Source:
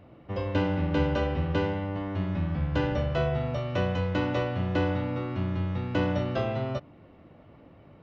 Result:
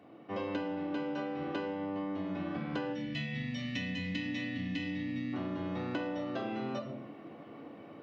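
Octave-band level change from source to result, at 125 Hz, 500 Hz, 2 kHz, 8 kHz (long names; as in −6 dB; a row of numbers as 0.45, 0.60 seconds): −14.0 dB, −9.5 dB, −5.0 dB, can't be measured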